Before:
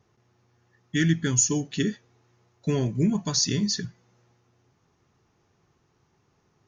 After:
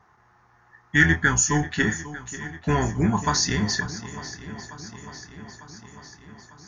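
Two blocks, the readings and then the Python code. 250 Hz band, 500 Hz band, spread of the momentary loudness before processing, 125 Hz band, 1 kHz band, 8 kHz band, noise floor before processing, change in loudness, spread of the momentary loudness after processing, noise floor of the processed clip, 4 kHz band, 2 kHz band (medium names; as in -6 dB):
+0.5 dB, +1.5 dB, 9 LU, +2.0 dB, +15.0 dB, +1.0 dB, -69 dBFS, +2.5 dB, 21 LU, -59 dBFS, +1.0 dB, +14.0 dB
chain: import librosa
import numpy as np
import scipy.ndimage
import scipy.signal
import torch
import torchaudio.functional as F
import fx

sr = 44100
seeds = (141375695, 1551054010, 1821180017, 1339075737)

y = fx.octave_divider(x, sr, octaves=1, level_db=-6.0)
y = fx.band_shelf(y, sr, hz=1200.0, db=15.0, octaves=1.7)
y = fx.doubler(y, sr, ms=27.0, db=-9.5)
y = fx.echo_swing(y, sr, ms=899, ratio=1.5, feedback_pct=59, wet_db=-15.5)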